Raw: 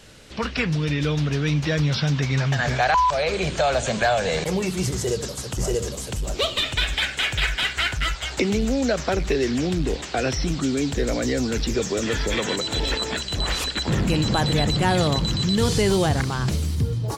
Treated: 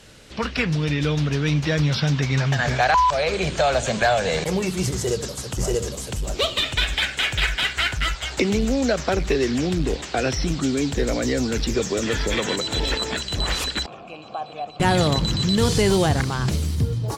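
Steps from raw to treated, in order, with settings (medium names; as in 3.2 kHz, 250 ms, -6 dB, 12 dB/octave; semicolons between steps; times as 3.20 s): Chebyshev shaper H 7 -33 dB, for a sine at -8 dBFS; 13.86–14.80 s: vowel filter a; trim +1.5 dB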